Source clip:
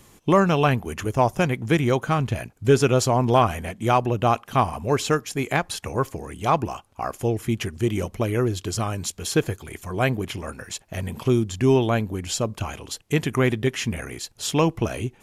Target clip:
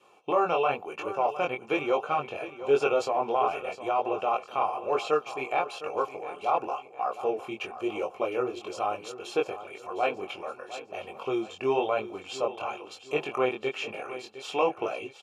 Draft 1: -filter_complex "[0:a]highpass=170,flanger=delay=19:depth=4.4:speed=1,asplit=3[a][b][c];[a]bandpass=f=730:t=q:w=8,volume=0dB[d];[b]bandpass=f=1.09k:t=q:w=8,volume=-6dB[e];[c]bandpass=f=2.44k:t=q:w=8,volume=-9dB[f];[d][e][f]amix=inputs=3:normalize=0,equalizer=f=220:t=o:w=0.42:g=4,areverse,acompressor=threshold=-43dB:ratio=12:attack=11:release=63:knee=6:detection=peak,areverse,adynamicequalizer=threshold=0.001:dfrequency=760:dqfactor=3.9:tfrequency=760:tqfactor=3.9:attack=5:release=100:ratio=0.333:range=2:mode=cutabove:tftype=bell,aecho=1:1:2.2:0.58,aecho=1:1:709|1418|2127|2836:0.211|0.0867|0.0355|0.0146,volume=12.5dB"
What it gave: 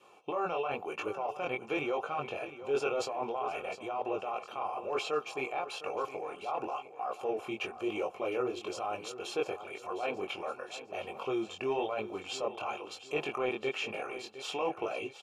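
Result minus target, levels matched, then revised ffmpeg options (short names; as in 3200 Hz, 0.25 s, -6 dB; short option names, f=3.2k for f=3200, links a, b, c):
compressor: peak gain reduction +10.5 dB
-filter_complex "[0:a]highpass=170,flanger=delay=19:depth=4.4:speed=1,asplit=3[a][b][c];[a]bandpass=f=730:t=q:w=8,volume=0dB[d];[b]bandpass=f=1.09k:t=q:w=8,volume=-6dB[e];[c]bandpass=f=2.44k:t=q:w=8,volume=-9dB[f];[d][e][f]amix=inputs=3:normalize=0,equalizer=f=220:t=o:w=0.42:g=4,areverse,acompressor=threshold=-31.5dB:ratio=12:attack=11:release=63:knee=6:detection=peak,areverse,adynamicequalizer=threshold=0.001:dfrequency=760:dqfactor=3.9:tfrequency=760:tqfactor=3.9:attack=5:release=100:ratio=0.333:range=2:mode=cutabove:tftype=bell,aecho=1:1:2.2:0.58,aecho=1:1:709|1418|2127|2836:0.211|0.0867|0.0355|0.0146,volume=12.5dB"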